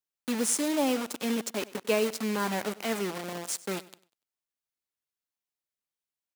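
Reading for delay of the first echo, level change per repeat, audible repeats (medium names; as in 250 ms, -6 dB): 97 ms, -10.0 dB, 2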